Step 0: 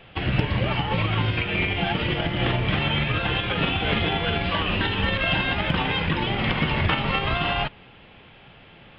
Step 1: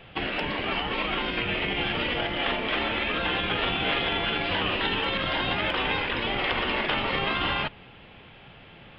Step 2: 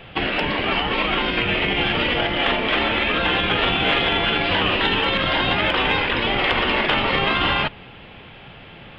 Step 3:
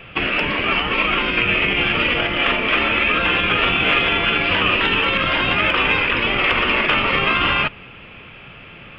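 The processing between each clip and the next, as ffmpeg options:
-af "afftfilt=real='re*lt(hypot(re,im),0.251)':imag='im*lt(hypot(re,im),0.251)':win_size=1024:overlap=0.75"
-af "acontrast=54,volume=1dB"
-af "equalizer=f=800:t=o:w=0.33:g=-6,equalizer=f=1.25k:t=o:w=0.33:g=6,equalizer=f=2.5k:t=o:w=0.33:g=8,equalizer=f=4k:t=o:w=0.33:g=-8"

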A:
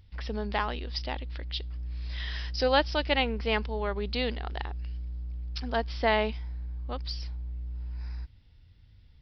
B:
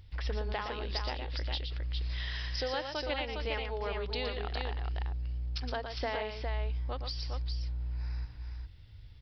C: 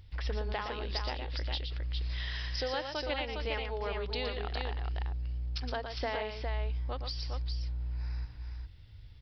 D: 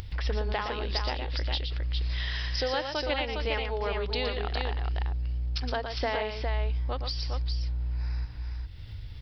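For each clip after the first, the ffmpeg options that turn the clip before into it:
-af "equalizer=f=220:t=o:w=0.42:g=-10.5,acompressor=threshold=-36dB:ratio=6,aecho=1:1:117|135|408:0.473|0.106|0.562,volume=3dB"
-af anull
-af "acompressor=mode=upward:threshold=-36dB:ratio=2.5,volume=5dB"

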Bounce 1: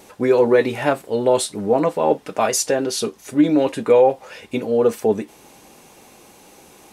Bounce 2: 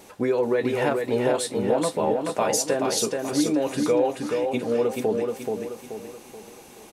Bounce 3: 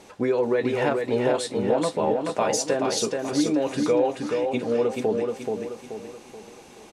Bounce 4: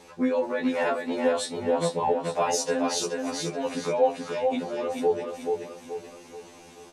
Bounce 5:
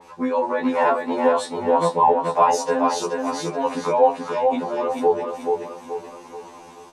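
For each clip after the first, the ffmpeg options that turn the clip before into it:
-filter_complex "[0:a]acompressor=threshold=-19dB:ratio=3,asplit=2[a][b];[b]aecho=0:1:430|860|1290|1720|2150:0.631|0.265|0.111|0.0467|0.0196[c];[a][c]amix=inputs=2:normalize=0,volume=-2dB"
-af "lowpass=7.5k"
-af "afftfilt=real='re*2*eq(mod(b,4),0)':imag='im*2*eq(mod(b,4),0)':win_size=2048:overlap=0.75,volume=1dB"
-filter_complex "[0:a]equalizer=f=980:w=2.8:g=11.5,acrossover=split=180|1700[a][b][c];[b]dynaudnorm=f=280:g=3:m=4.5dB[d];[a][d][c]amix=inputs=3:normalize=0,adynamicequalizer=threshold=0.0251:dfrequency=3000:dqfactor=0.7:tfrequency=3000:tqfactor=0.7:attack=5:release=100:ratio=0.375:range=1.5:mode=cutabove:tftype=highshelf"

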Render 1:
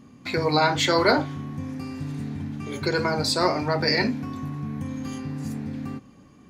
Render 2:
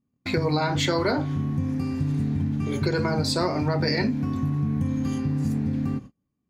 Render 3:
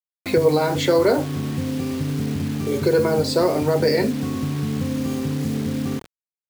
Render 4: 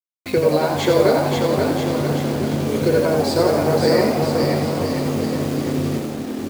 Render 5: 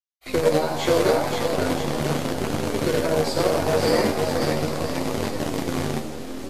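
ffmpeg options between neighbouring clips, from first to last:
-af "lowshelf=f=310:g=10.5,acompressor=threshold=-20dB:ratio=6,agate=range=-34dB:threshold=-36dB:ratio=16:detection=peak"
-af "equalizer=f=470:t=o:w=0.91:g=11.5,acrusher=bits=5:mix=0:aa=0.000001,lowshelf=f=61:g=-6"
-filter_complex "[0:a]asplit=2[a][b];[b]aecho=0:1:530|980.5|1363|1689|1966:0.631|0.398|0.251|0.158|0.1[c];[a][c]amix=inputs=2:normalize=0,aeval=exprs='sgn(val(0))*max(abs(val(0))-0.0158,0)':c=same,asplit=2[d][e];[e]asplit=8[f][g][h][i][j][k][l][m];[f]adelay=86,afreqshift=84,volume=-6.5dB[n];[g]adelay=172,afreqshift=168,volume=-11.2dB[o];[h]adelay=258,afreqshift=252,volume=-16dB[p];[i]adelay=344,afreqshift=336,volume=-20.7dB[q];[j]adelay=430,afreqshift=420,volume=-25.4dB[r];[k]adelay=516,afreqshift=504,volume=-30.2dB[s];[l]adelay=602,afreqshift=588,volume=-34.9dB[t];[m]adelay=688,afreqshift=672,volume=-39.6dB[u];[n][o][p][q][r][s][t][u]amix=inputs=8:normalize=0[v];[d][v]amix=inputs=2:normalize=0"
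-filter_complex "[0:a]acrossover=split=430|1200[a][b][c];[a]acrusher=bits=4:dc=4:mix=0:aa=0.000001[d];[d][b][c]amix=inputs=3:normalize=0,flanger=delay=9.9:depth=3.1:regen=45:speed=0.75:shape=sinusoidal" -ar 44100 -c:a libvorbis -b:a 32k

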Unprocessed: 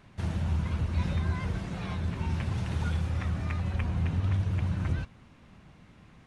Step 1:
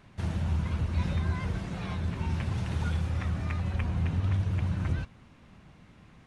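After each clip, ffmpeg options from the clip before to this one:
-af anull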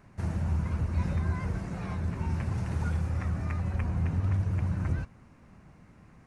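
-af "equalizer=f=3.4k:t=o:w=0.71:g=-12.5"

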